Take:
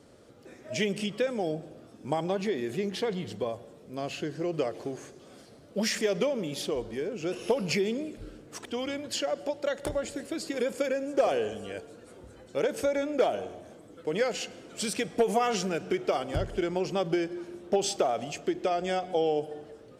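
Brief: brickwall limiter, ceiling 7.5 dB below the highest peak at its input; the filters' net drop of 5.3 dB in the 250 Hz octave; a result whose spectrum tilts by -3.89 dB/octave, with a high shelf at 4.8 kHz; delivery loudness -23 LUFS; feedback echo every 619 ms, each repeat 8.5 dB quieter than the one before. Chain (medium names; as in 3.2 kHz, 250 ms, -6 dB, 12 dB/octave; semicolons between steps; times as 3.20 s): peaking EQ 250 Hz -8 dB; treble shelf 4.8 kHz -3 dB; peak limiter -22.5 dBFS; feedback delay 619 ms, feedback 38%, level -8.5 dB; trim +11 dB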